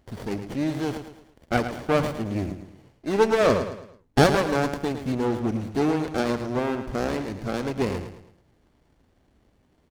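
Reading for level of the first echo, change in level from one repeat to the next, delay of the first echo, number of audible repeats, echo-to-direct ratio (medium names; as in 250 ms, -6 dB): -9.5 dB, -8.0 dB, 109 ms, 4, -9.0 dB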